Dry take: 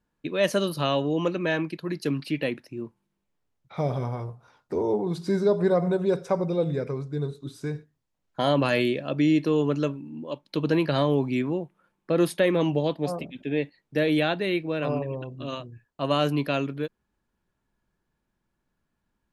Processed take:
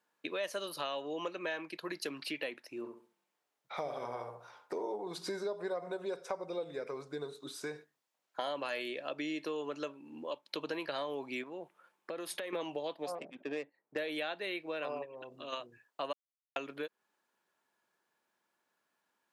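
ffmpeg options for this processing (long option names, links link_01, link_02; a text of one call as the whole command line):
ffmpeg -i in.wav -filter_complex "[0:a]asettb=1/sr,asplit=3[link_01][link_02][link_03];[link_01]atrim=end=2.774[link_04];[link_02]atrim=start=2.77:end=4.94,asetpts=PTS-STARTPTS,afade=type=in:duration=0.004:curve=qsin,afade=type=out:start_time=2.166:duration=0.004:curve=qsin,asplit=2[link_05][link_06];[link_06]adelay=67,lowpass=frequency=1700:poles=1,volume=-5.5dB,asplit=2[link_07][link_08];[link_08]adelay=67,lowpass=frequency=1700:poles=1,volume=0.33,asplit=2[link_09][link_10];[link_10]adelay=67,lowpass=frequency=1700:poles=1,volume=0.33,asplit=2[link_11][link_12];[link_12]adelay=67,lowpass=frequency=1700:poles=1,volume=0.33[link_13];[link_05][link_07][link_09][link_11][link_13]amix=inputs=5:normalize=0,atrim=end_sample=95697[link_14];[link_03]atrim=start=4.936[link_15];[link_04][link_14]acrossfade=duration=0.004:curve1=hsin:curve2=qsin[link_16];[link_16][link_15]acrossfade=duration=0.004:curve1=qsin:curve2=hsin,asettb=1/sr,asplit=3[link_17][link_18][link_19];[link_17]atrim=end=11.434[link_20];[link_18]atrim=start=11.43:end=12.53,asetpts=PTS-STARTPTS,afade=type=in:duration=0.004:curve=qsin,afade=type=out:start_time=1.096:duration=0.004:curve=qsin,acompressor=threshold=-34dB:ratio=5:attack=3.2:release=140:knee=1:detection=peak[link_21];[link_19]atrim=start=12.526[link_22];[link_20][link_21]acrossfade=duration=0.004:curve1=hsin:curve2=qsin[link_23];[link_23][link_22]acrossfade=duration=0.004:curve1=qsin:curve2=hsin,asettb=1/sr,asplit=3[link_24][link_25][link_26];[link_24]atrim=end=13.154[link_27];[link_25]atrim=start=13.15:end=13.98,asetpts=PTS-STARTPTS,afade=type=in:duration=0.004:curve=qsin,afade=type=out:start_time=0.826:duration=0.004:curve=qsin,adynamicsmooth=sensitivity=2.5:basefreq=1100[link_28];[link_26]atrim=start=13.976[link_29];[link_27][link_28]acrossfade=duration=0.004:curve1=hsin:curve2=qsin[link_30];[link_30][link_29]acrossfade=duration=0.004:curve1=qsin:curve2=hsin,asplit=3[link_31][link_32][link_33];[link_31]afade=type=out:start_time=15.04:duration=0.02[link_34];[link_32]acompressor=threshold=-38dB:ratio=6:attack=3.2:release=140:knee=1:detection=peak,afade=type=in:start_time=15.04:duration=0.02,afade=type=out:start_time=15.52:duration=0.02[link_35];[link_33]afade=type=in:start_time=15.52:duration=0.02[link_36];[link_34][link_35][link_36]amix=inputs=3:normalize=0,asplit=3[link_37][link_38][link_39];[link_37]atrim=end=16.13,asetpts=PTS-STARTPTS,afade=type=out:start_time=16.126:duration=0.004:curve=hsin[link_40];[link_38]atrim=start=16.13:end=16.56,asetpts=PTS-STARTPTS,volume=0[link_41];[link_39]atrim=start=16.56,asetpts=PTS-STARTPTS,afade=type=in:duration=0.004:curve=hsin[link_42];[link_40][link_41][link_42]concat=n=3:v=0:a=1,highpass=540,acompressor=threshold=-40dB:ratio=4,volume=3dB" out.wav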